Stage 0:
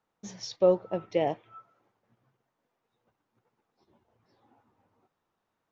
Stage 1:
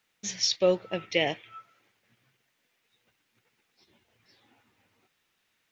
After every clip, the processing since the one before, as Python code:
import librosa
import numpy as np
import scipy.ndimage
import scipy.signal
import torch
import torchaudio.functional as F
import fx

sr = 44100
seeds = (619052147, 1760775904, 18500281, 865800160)

y = fx.high_shelf_res(x, sr, hz=1500.0, db=13.0, q=1.5)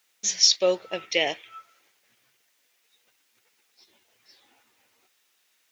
y = fx.bass_treble(x, sr, bass_db=-14, treble_db=9)
y = y * librosa.db_to_amplitude(2.0)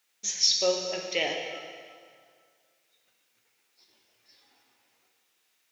y = fx.rev_plate(x, sr, seeds[0], rt60_s=2.0, hf_ratio=0.85, predelay_ms=0, drr_db=1.5)
y = y * librosa.db_to_amplitude(-5.5)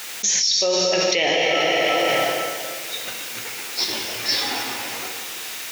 y = fx.env_flatten(x, sr, amount_pct=100)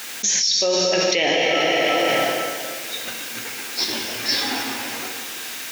y = fx.small_body(x, sr, hz=(250.0, 1600.0), ring_ms=40, db=8)